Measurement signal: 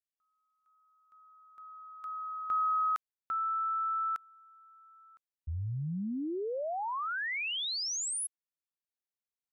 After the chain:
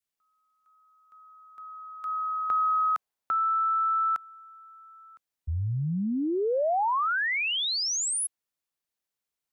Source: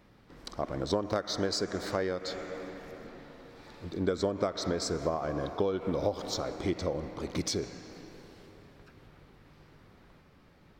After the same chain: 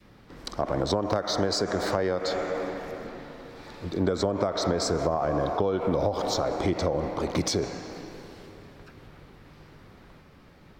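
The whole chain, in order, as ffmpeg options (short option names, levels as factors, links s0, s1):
-filter_complex "[0:a]adynamicequalizer=threshold=0.00501:dfrequency=760:dqfactor=0.89:tfrequency=760:tqfactor=0.89:attack=5:release=100:ratio=0.375:range=4:mode=boostabove:tftype=bell,acrossover=split=190[s0][s1];[s1]acompressor=threshold=0.0282:ratio=4:attack=6.1:release=84:knee=2.83:detection=peak[s2];[s0][s2]amix=inputs=2:normalize=0,volume=2.11"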